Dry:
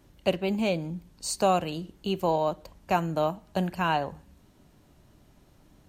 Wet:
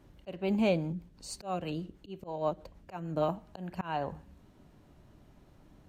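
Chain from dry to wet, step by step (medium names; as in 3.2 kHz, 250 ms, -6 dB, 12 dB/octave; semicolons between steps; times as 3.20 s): treble shelf 3.7 kHz -9.5 dB; slow attack 300 ms; 0.92–3.29 s: rotary cabinet horn 6.3 Hz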